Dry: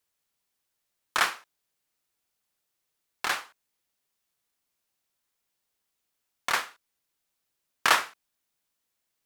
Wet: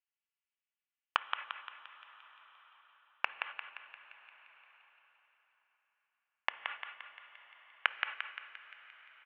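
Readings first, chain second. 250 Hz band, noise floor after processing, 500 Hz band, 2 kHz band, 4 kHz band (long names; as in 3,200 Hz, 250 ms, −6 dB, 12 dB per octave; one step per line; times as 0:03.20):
below −15 dB, below −85 dBFS, −13.0 dB, −8.0 dB, −10.0 dB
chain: Bessel high-pass filter 440 Hz, order 8
downward expander −54 dBFS
Butterworth low-pass 3,000 Hz 72 dB per octave
spectral tilt +4.5 dB per octave
comb filter 3.5 ms, depth 87%
downward compressor 16 to 1, threshold −24 dBFS, peak gain reduction 14 dB
gate with flip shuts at −21 dBFS, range −33 dB
on a send: feedback echo with a high-pass in the loop 174 ms, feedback 55%, high-pass 760 Hz, level −4 dB
on the sum: dense smooth reverb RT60 4.3 s, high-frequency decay 0.85×, DRR 13.5 dB
one half of a high-frequency compander encoder only
level +7 dB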